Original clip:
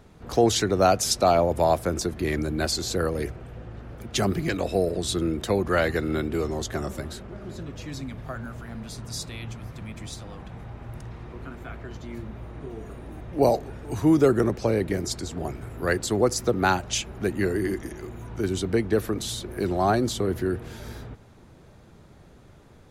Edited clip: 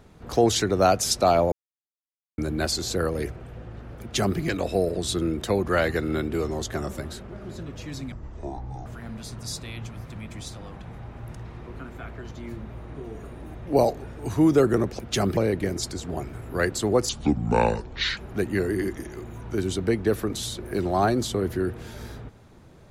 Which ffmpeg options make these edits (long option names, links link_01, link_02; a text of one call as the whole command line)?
ffmpeg -i in.wav -filter_complex "[0:a]asplit=9[link_01][link_02][link_03][link_04][link_05][link_06][link_07][link_08][link_09];[link_01]atrim=end=1.52,asetpts=PTS-STARTPTS,afade=type=out:start_time=1.516:duration=0.004:curve=hsin[link_10];[link_02]atrim=start=1.52:end=2.38,asetpts=PTS-STARTPTS,volume=0[link_11];[link_03]atrim=start=2.38:end=8.124,asetpts=PTS-STARTPTS,afade=type=in:duration=0.004:curve=hsin[link_12];[link_04]atrim=start=8.12:end=8.52,asetpts=PTS-STARTPTS,asetrate=23814,aresample=44100[link_13];[link_05]atrim=start=8.516:end=14.652[link_14];[link_06]atrim=start=4.008:end=4.392[link_15];[link_07]atrim=start=14.648:end=16.374[link_16];[link_08]atrim=start=16.37:end=17.03,asetpts=PTS-STARTPTS,asetrate=26901,aresample=44100[link_17];[link_09]atrim=start=17.026[link_18];[link_10][link_11][link_12]concat=n=3:v=0:a=1[link_19];[link_19][link_13]acrossfade=duration=0.004:curve1=hsin:curve2=hsin[link_20];[link_20][link_14]acrossfade=duration=0.004:curve1=hsin:curve2=hsin[link_21];[link_21][link_15]acrossfade=duration=0.004:curve1=hsin:curve2=hsin[link_22];[link_22][link_16]acrossfade=duration=0.004:curve1=hsin:curve2=hsin[link_23];[link_23][link_17]acrossfade=duration=0.004:curve1=hsin:curve2=hsin[link_24];[link_24][link_18]acrossfade=duration=0.004:curve1=hsin:curve2=hsin" out.wav